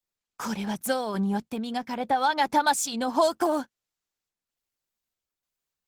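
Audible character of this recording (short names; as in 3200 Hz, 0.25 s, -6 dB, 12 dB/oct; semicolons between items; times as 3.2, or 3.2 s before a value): random-step tremolo; Opus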